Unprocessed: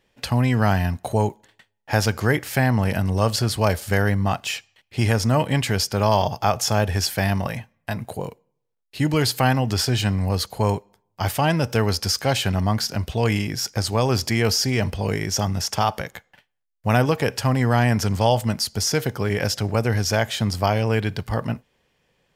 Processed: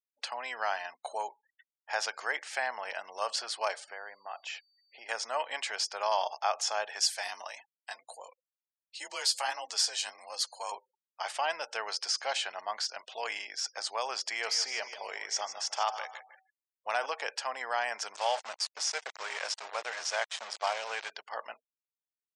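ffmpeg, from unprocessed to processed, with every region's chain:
ffmpeg -i in.wav -filter_complex "[0:a]asettb=1/sr,asplit=3[link_01][link_02][link_03];[link_01]atrim=end=3.844[link_04];[link_02]atrim=start=3.84:end=5.09,asetpts=PTS-STARTPTS,afade=type=in:duration=0.004:curve=qsin,afade=type=out:start_time=1.246:duration=0.004:curve=qsin,highshelf=frequency=2800:gain=-10,acompressor=threshold=-25dB:ratio=3:attack=3.2:release=140:knee=1:detection=peak,aeval=exprs='val(0)+0.00112*sin(2*PI*4600*n/s)':channel_layout=same[link_05];[link_03]atrim=start=5.086[link_06];[link_04][link_05]acrossfade=duration=0.004:curve1=hsin:curve2=qsin[link_07];[link_07][link_06]acrossfade=duration=0.004:curve1=qsin:curve2=hsin,asettb=1/sr,asplit=3[link_08][link_09][link_10];[link_08]atrim=end=7.004[link_11];[link_09]atrim=start=7:end=10.72,asetpts=PTS-STARTPTS,afade=type=in:duration=0.004:curve=qsin,afade=type=out:start_time=3.716:duration=0.004:curve=qsin,bass=frequency=250:gain=-6,treble=frequency=4000:gain=12,flanger=delay=3.9:depth=7.1:regen=39:speed=1.5:shape=sinusoidal,afreqshift=38[link_12];[link_10]atrim=start=10.716[link_13];[link_11][link_12]acrossfade=duration=0.004:curve1=hsin:curve2=qsin[link_14];[link_14][link_13]acrossfade=duration=0.004:curve1=qsin:curve2=hsin,asettb=1/sr,asplit=3[link_15][link_16][link_17];[link_15]atrim=end=14.274[link_18];[link_16]atrim=start=14.27:end=17.06,asetpts=PTS-STARTPTS,afade=type=in:duration=0.004:curve=qsin,afade=type=out:start_time=2.786:duration=0.004:curve=qsin,asoftclip=type=hard:threshold=-8dB,bandreject=frequency=253.2:width_type=h:width=4,bandreject=frequency=506.4:width_type=h:width=4,bandreject=frequency=759.6:width_type=h:width=4,bandreject=frequency=1012.8:width_type=h:width=4,bandreject=frequency=1266:width_type=h:width=4,bandreject=frequency=1519.2:width_type=h:width=4,bandreject=frequency=1772.4:width_type=h:width=4,bandreject=frequency=2025.6:width_type=h:width=4,bandreject=frequency=2278.8:width_type=h:width=4,aecho=1:1:154|308|462:0.266|0.0772|0.0224,atrim=end_sample=123039[link_19];[link_17]atrim=start=17.056[link_20];[link_18][link_19]acrossfade=duration=0.004:curve1=hsin:curve2=qsin[link_21];[link_21][link_20]acrossfade=duration=0.004:curve1=qsin:curve2=hsin,asettb=1/sr,asplit=3[link_22][link_23][link_24];[link_22]atrim=end=18.154[link_25];[link_23]atrim=start=18.15:end=21.1,asetpts=PTS-STARTPTS,afade=type=in:duration=0.004:curve=qsin,afade=type=out:start_time=2.946:duration=0.004:curve=qsin,equalizer=frequency=330:width_type=o:width=0.33:gain=-11,aeval=exprs='val(0)*gte(abs(val(0)),0.0596)':channel_layout=same[link_26];[link_24]atrim=start=21.096[link_27];[link_25][link_26]acrossfade=duration=0.004:curve1=hsin:curve2=qsin[link_28];[link_28][link_27]acrossfade=duration=0.004:curve1=qsin:curve2=hsin,lowpass=frequency=8600:width=0.5412,lowpass=frequency=8600:width=1.3066,afftfilt=real='re*gte(hypot(re,im),0.00708)':imag='im*gte(hypot(re,im),0.00708)':win_size=1024:overlap=0.75,highpass=frequency=650:width=0.5412,highpass=frequency=650:width=1.3066,volume=-7.5dB" out.wav

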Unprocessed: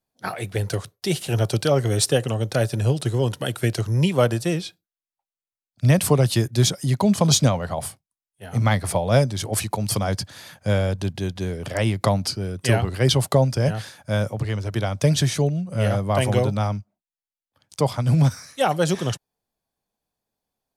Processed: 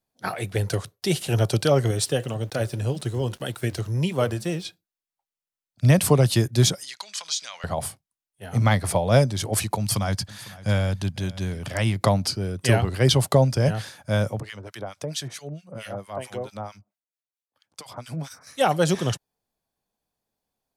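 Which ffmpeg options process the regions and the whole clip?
ffmpeg -i in.wav -filter_complex "[0:a]asettb=1/sr,asplit=3[link_01][link_02][link_03];[link_01]atrim=end=1.914[link_04];[link_02]atrim=start=1.91:end=4.65,asetpts=PTS-STARTPTS,afade=type=in:duration=0.004:curve=qsin,afade=type=out:start_time=2.736:duration=0.004:curve=qsin,flanger=delay=2.3:depth=4.8:regen=-85:speed=1.8:shape=sinusoidal,aeval=exprs='val(0)*gte(abs(val(0)),0.00398)':channel_layout=same[link_05];[link_03]atrim=start=4.646[link_06];[link_04][link_05]acrossfade=duration=0.004:curve1=hsin:curve2=qsin[link_07];[link_07][link_06]acrossfade=duration=0.004:curve1=qsin:curve2=hsin,asettb=1/sr,asplit=3[link_08][link_09][link_10];[link_08]atrim=end=6.834[link_11];[link_09]atrim=start=6.83:end=7.64,asetpts=PTS-STARTPTS,afade=type=in:duration=0.004:curve=qsin,afade=type=out:start_time=0.806:duration=0.004:curve=qsin,highshelf=frequency=3200:gain=9,acompressor=threshold=-20dB:ratio=8:attack=3.2:release=140:knee=1:detection=peak,asuperpass=centerf=3200:order=4:qfactor=0.64[link_12];[link_10]atrim=start=7.636[link_13];[link_11][link_12]acrossfade=duration=0.004:curve1=hsin:curve2=qsin[link_14];[link_14][link_13]acrossfade=duration=0.004:curve1=qsin:curve2=hsin,asettb=1/sr,asplit=3[link_15][link_16][link_17];[link_15]atrim=end=9.784[link_18];[link_16]atrim=start=9.78:end=11.96,asetpts=PTS-STARTPTS,afade=type=in:duration=0.004:curve=qsin,afade=type=out:start_time=2.176:duration=0.004:curve=qsin,equalizer=frequency=440:width_type=o:width=1.1:gain=-7.5,aecho=1:1:502:0.106,atrim=end_sample=96138[link_19];[link_17]atrim=start=11.956[link_20];[link_18][link_19]acrossfade=duration=0.004:curve1=hsin:curve2=qsin[link_21];[link_21][link_20]acrossfade=duration=0.004:curve1=qsin:curve2=hsin,asettb=1/sr,asplit=3[link_22][link_23][link_24];[link_22]atrim=end=14.404[link_25];[link_23]atrim=start=14.4:end=18.47,asetpts=PTS-STARTPTS,afade=type=in:duration=0.004:curve=qsin,afade=type=out:start_time=4.066:duration=0.004:curve=qsin,highpass=frequency=350:poles=1,acompressor=threshold=-26dB:ratio=3:attack=3.2:release=140:knee=1:detection=peak,acrossover=split=1300[link_26][link_27];[link_26]aeval=exprs='val(0)*(1-1/2+1/2*cos(2*PI*4.5*n/s))':channel_layout=same[link_28];[link_27]aeval=exprs='val(0)*(1-1/2-1/2*cos(2*PI*4.5*n/s))':channel_layout=same[link_29];[link_28][link_29]amix=inputs=2:normalize=0[link_30];[link_24]atrim=start=18.466[link_31];[link_25][link_30]acrossfade=duration=0.004:curve1=hsin:curve2=qsin[link_32];[link_32][link_31]acrossfade=duration=0.004:curve1=qsin:curve2=hsin" out.wav

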